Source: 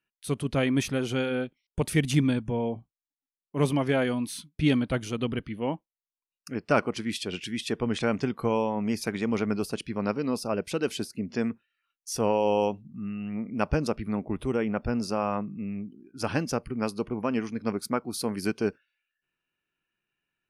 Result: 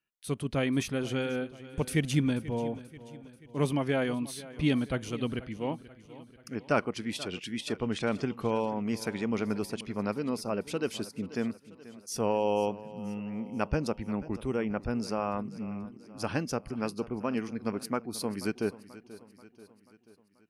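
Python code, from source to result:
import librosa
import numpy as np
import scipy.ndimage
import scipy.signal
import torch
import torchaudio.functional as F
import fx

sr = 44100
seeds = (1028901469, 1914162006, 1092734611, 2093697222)

y = fx.echo_feedback(x, sr, ms=485, feedback_pct=54, wet_db=-17.5)
y = y * 10.0 ** (-3.5 / 20.0)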